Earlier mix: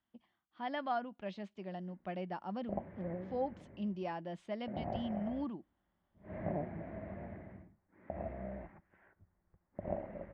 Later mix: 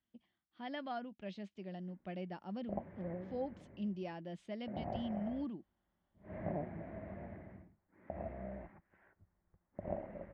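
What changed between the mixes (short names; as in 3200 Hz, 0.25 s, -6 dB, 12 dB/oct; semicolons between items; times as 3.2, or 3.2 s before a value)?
speech: add bell 1000 Hz -9 dB 1.4 oct; reverb: off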